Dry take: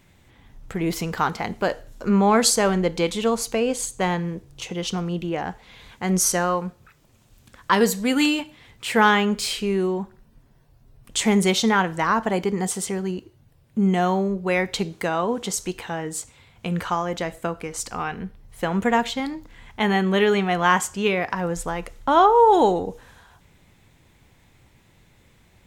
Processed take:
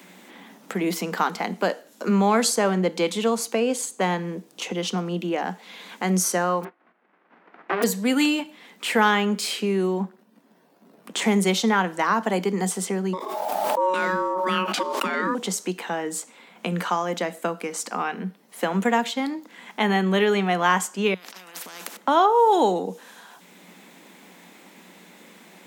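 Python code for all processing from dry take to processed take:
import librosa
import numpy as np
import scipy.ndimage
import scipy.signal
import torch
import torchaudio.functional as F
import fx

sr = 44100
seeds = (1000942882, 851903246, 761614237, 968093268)

y = fx.envelope_flatten(x, sr, power=0.1, at=(6.63, 7.82), fade=0.02)
y = fx.lowpass(y, sr, hz=1800.0, slope=24, at=(6.63, 7.82), fade=0.02)
y = fx.ring_mod(y, sr, carrier_hz=200.0, at=(6.63, 7.82), fade=0.02)
y = fx.chain(y, sr, fx.leveller(passes=1),
    fx.high_shelf(hz=2900.0, db=-10.0), at=(10.0, 11.22))
y = fx.chain(y, sr, fx.ring_mod(carrier_hz=740.0),
    fx.pre_swell(db_per_s=25.0), at=(13.13, 15.35))
y = fx.chain(y, sr, fx.over_compress(threshold_db=-31.0, ratio=-0.5),
    fx.spectral_comp(ratio=10.0), at=(21.14, 21.97))
y = scipy.signal.sosfilt(scipy.signal.cheby1(6, 1.0, 180.0, 'highpass', fs=sr, output='sos'), y)
y = fx.high_shelf(y, sr, hz=11000.0, db=4.0)
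y = fx.band_squash(y, sr, depth_pct=40)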